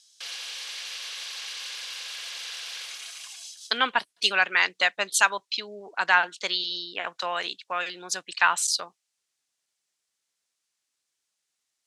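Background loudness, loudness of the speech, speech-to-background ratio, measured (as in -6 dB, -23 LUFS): -35.0 LUFS, -25.0 LUFS, 10.0 dB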